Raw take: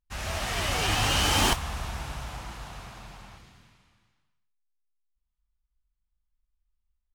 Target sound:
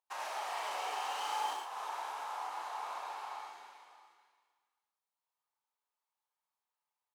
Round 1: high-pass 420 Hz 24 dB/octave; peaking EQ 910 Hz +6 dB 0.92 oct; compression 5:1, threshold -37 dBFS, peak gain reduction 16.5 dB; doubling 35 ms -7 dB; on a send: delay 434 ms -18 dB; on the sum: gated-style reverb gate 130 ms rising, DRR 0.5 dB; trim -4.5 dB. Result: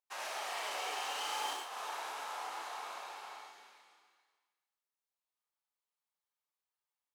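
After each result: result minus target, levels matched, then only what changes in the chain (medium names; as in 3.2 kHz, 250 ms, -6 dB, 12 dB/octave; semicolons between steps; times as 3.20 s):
echo 149 ms early; 1 kHz band -3.0 dB
change: delay 583 ms -18 dB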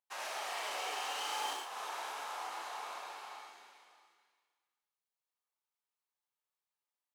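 1 kHz band -3.0 dB
change: peaking EQ 910 Hz +15 dB 0.92 oct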